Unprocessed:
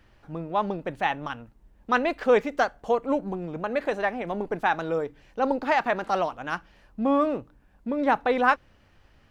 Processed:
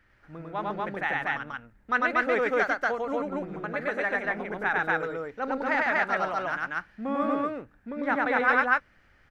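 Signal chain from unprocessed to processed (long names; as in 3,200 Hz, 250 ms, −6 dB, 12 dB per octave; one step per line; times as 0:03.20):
flat-topped bell 1,700 Hz +9 dB 1 octave
on a send: loudspeakers that aren't time-aligned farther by 34 metres −1 dB, 82 metres 0 dB
on the sum: level −8.5 dB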